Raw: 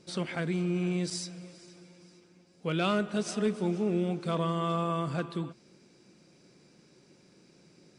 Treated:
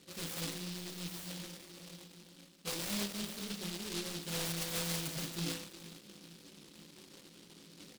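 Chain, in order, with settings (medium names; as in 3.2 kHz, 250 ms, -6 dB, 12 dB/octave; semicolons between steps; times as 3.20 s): level-controlled noise filter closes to 540 Hz, open at -29.5 dBFS; reverse; compression, threshold -39 dBFS, peak gain reduction 14.5 dB; reverse; overdrive pedal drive 19 dB, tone 1.6 kHz, clips at -28.5 dBFS; chorus voices 6, 0.71 Hz, delay 21 ms, depth 3.6 ms; feedback delay 453 ms, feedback 52%, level -19.5 dB; on a send at -4 dB: reverberation RT60 0.65 s, pre-delay 3 ms; on the sum: delay time shaken by noise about 3.8 kHz, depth 0.4 ms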